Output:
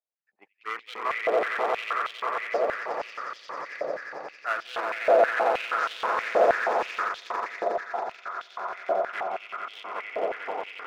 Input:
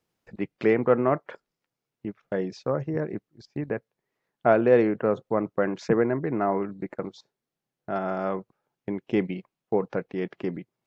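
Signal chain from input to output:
echo that builds up and dies away 90 ms, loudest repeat 8, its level −4 dB
in parallel at +1.5 dB: brickwall limiter −10.5 dBFS, peak gain reduction 7 dB
0:07.07–0:08.35: on the sum: amplitude modulation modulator 25 Hz, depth 20%
gain into a clipping stage and back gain 9.5 dB
downward expander −5 dBFS
high-pass on a step sequencer 6.3 Hz 640–3,300 Hz

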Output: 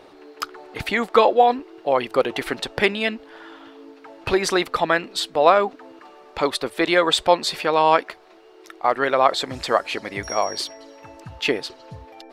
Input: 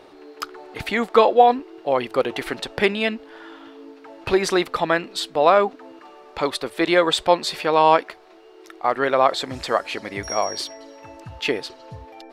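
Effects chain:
harmonic and percussive parts rebalanced percussive +4 dB
level −2 dB

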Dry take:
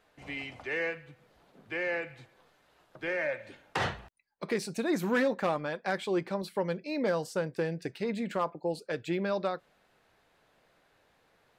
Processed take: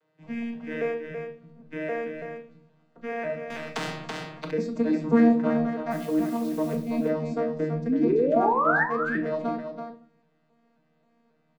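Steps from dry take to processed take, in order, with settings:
vocoder with an arpeggio as carrier bare fifth, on D#3, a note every 269 ms
dynamic equaliser 130 Hz, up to −5 dB, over −43 dBFS, Q 0.84
in parallel at −7 dB: slack as between gear wheels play −43 dBFS
0:05.90–0:06.75: on the sum: background noise white −52 dBFS
0:07.89–0:08.84: sound drawn into the spectrogram rise 240–1,900 Hz −25 dBFS
single-tap delay 330 ms −7 dB
rectangular room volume 560 cubic metres, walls furnished, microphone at 1.6 metres
0:03.50–0:04.51: every bin compressed towards the loudest bin 2 to 1

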